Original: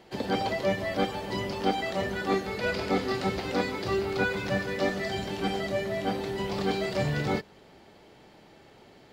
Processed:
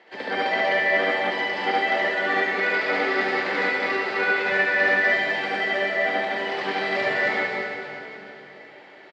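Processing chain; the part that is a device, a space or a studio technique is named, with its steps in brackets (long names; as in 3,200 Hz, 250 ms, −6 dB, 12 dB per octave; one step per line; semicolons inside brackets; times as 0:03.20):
station announcement (band-pass filter 420–3,900 Hz; parametric band 1,900 Hz +10.5 dB 0.53 octaves; loudspeakers that aren't time-aligned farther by 25 metres 0 dB, 38 metres −10 dB, 87 metres −3 dB; convolution reverb RT60 3.4 s, pre-delay 43 ms, DRR 3 dB)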